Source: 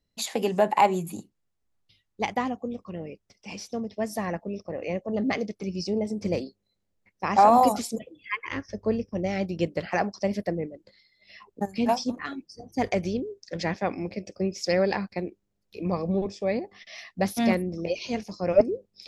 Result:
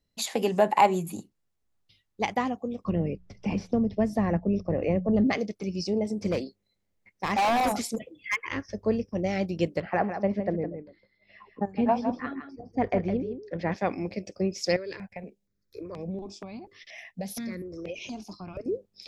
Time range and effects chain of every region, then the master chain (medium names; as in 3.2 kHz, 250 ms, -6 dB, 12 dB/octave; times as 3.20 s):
2.84–5.27 s: RIAA curve playback + hum notches 60/120/180 Hz + three bands compressed up and down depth 70%
6.29–8.40 s: peaking EQ 2.1 kHz +6.5 dB 0.27 oct + hard clipper -21.5 dBFS
9.80–13.72 s: low-pass 1.8 kHz + delay 160 ms -9 dB
14.76–18.66 s: compression 5:1, threshold -30 dBFS + stepped phaser 4.2 Hz 210–4500 Hz
whole clip: none